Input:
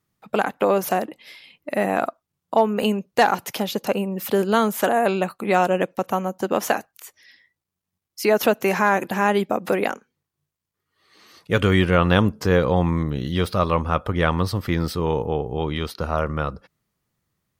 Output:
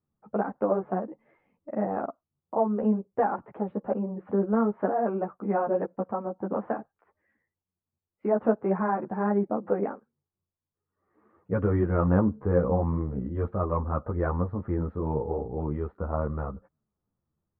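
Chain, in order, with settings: Bessel low-pass 890 Hz, order 6; three-phase chorus; trim -2 dB

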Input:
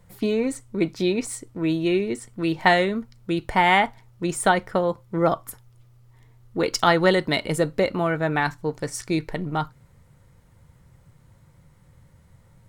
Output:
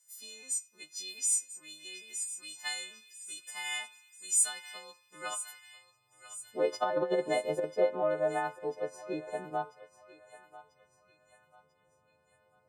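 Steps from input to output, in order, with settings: partials quantised in pitch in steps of 3 st; band-pass sweep 7.3 kHz -> 580 Hz, 4.67–6.29 s; band-passed feedback delay 90 ms, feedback 71%, band-pass 2.1 kHz, level -21.5 dB; 6.64–7.64 s: compressor with a negative ratio -25 dBFS, ratio -0.5; on a send: thinning echo 992 ms, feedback 52%, high-pass 1.1 kHz, level -13 dB; on the sum: trim -2.5 dB

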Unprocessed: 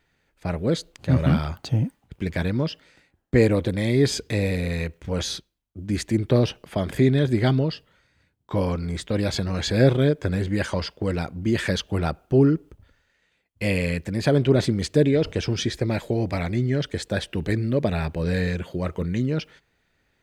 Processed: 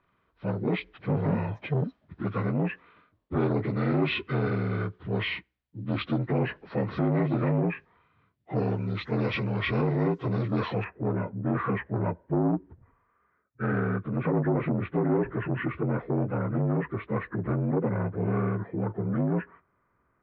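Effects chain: frequency axis rescaled in octaves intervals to 78%; low-pass 3.7 kHz 24 dB/octave, from 8.56 s 6 kHz, from 10.84 s 1.9 kHz; peak limiter -15 dBFS, peak gain reduction 9 dB; transformer saturation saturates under 340 Hz

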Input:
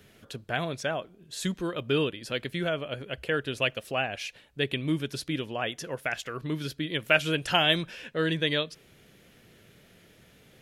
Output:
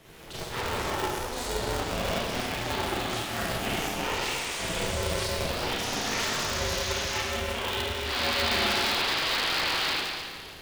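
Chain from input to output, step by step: reverse; compression 10:1, threshold -36 dBFS, peak gain reduction 20 dB; reverse; painted sound noise, 8.05–9.92 s, 490–4800 Hz -37 dBFS; Schroeder reverb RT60 1.9 s, combs from 28 ms, DRR -9 dB; ever faster or slower copies 138 ms, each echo +6 st, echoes 3, each echo -6 dB; polarity switched at an audio rate 240 Hz

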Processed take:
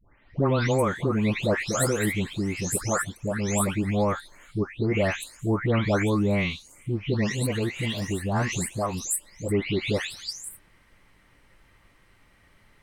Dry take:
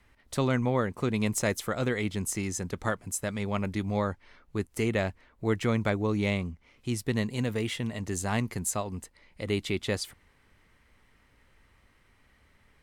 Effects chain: delay that grows with frequency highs late, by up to 458 ms; trim +5.5 dB

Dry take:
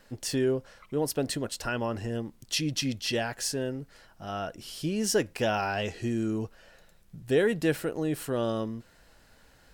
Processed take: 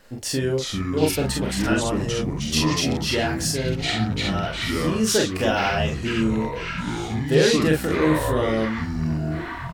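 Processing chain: on a send: early reflections 32 ms -4.5 dB, 45 ms -3.5 dB; on the sum: ever faster or slower copies 257 ms, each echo -6 st, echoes 3; trim +3.5 dB

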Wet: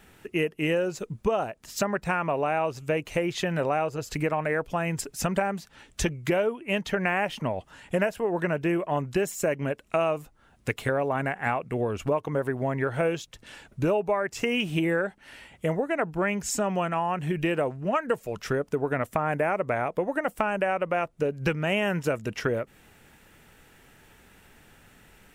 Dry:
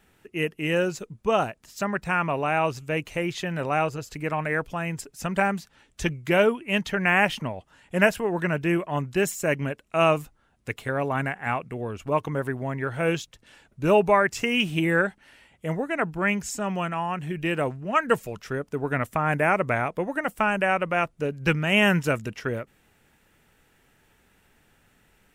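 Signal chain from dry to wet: dynamic bell 550 Hz, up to +7 dB, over -35 dBFS, Q 0.8; compression 6:1, threshold -31 dBFS, peak gain reduction 20.5 dB; trim +7 dB

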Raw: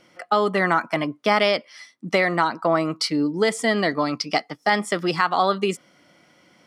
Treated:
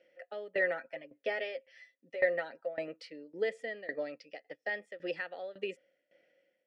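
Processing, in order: vowel filter e; tremolo saw down 1.8 Hz, depth 90%; 0.57–2.88 s: comb 7.5 ms, depth 57%

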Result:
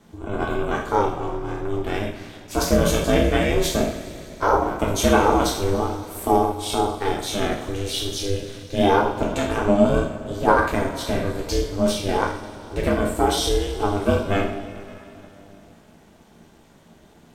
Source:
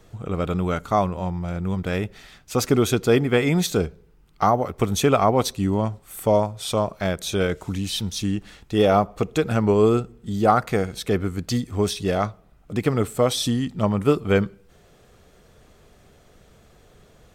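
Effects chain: spectral sustain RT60 0.37 s; two-slope reverb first 0.44 s, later 3.2 s, from -16 dB, DRR -1 dB; ring modulator 200 Hz; trim -1 dB

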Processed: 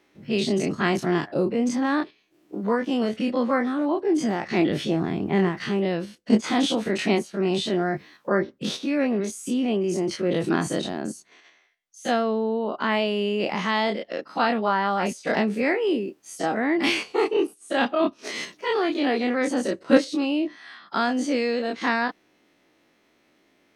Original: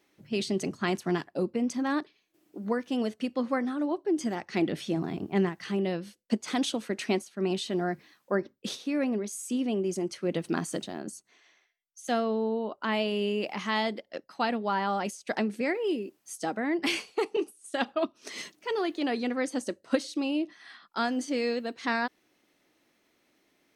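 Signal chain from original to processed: every event in the spectrogram widened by 60 ms; treble shelf 6.1 kHz -10 dB; in parallel at -3 dB: level held to a coarse grid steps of 20 dB; on the sum: trim +2 dB

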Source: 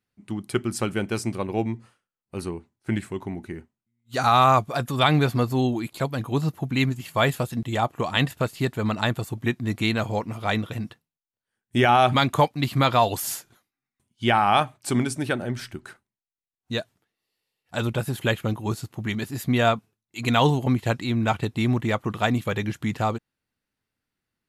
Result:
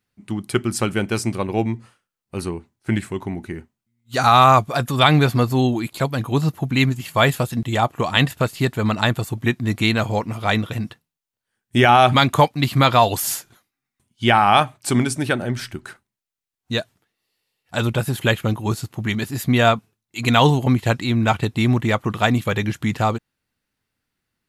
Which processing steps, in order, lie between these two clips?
peaking EQ 400 Hz -2 dB 2.6 oct; trim +6 dB

